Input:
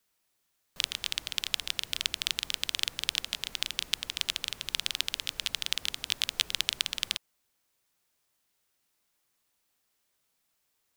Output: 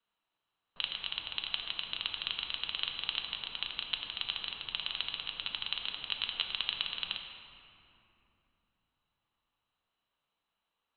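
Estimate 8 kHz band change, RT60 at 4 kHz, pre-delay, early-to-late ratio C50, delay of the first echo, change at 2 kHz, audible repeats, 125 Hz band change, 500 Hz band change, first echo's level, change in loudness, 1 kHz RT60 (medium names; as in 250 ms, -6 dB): under -40 dB, 1.7 s, 4 ms, 4.5 dB, no echo, -4.0 dB, no echo, -6.0 dB, -4.5 dB, no echo, -4.0 dB, 2.7 s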